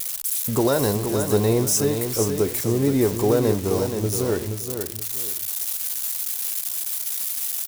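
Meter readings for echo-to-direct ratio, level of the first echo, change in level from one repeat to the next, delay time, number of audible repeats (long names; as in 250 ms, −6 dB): −6.5 dB, −7.0 dB, −11.5 dB, 474 ms, 2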